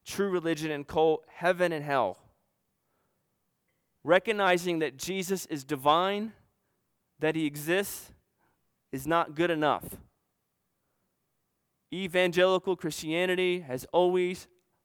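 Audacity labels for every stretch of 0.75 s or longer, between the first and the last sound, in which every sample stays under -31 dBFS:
2.120000	4.070000	silence
6.260000	7.220000	silence
7.960000	8.940000	silence
9.880000	11.930000	silence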